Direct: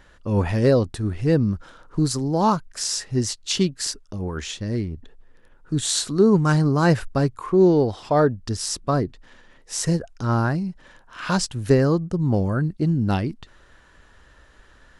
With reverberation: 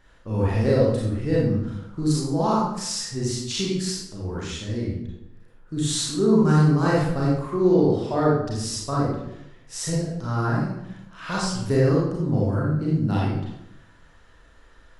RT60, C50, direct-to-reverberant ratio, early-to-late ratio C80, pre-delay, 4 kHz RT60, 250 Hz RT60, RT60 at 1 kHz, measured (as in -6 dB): 0.80 s, -0.5 dB, -5.5 dB, 3.5 dB, 31 ms, 0.60 s, 0.90 s, 0.80 s